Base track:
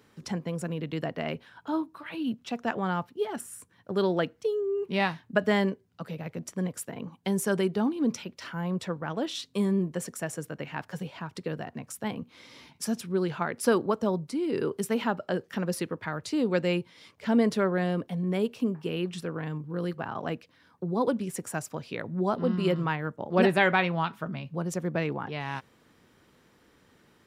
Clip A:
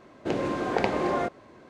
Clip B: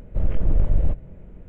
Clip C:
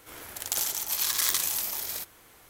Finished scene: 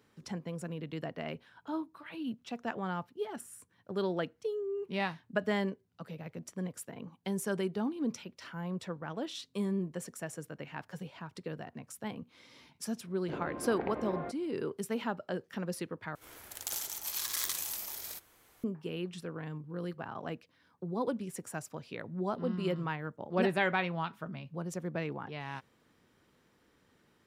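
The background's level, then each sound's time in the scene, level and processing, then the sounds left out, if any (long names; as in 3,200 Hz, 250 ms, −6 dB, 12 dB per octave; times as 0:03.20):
base track −7 dB
0:13.03: mix in A −11 dB + high-frequency loss of the air 490 metres
0:16.15: overwrite with C −8.5 dB
not used: B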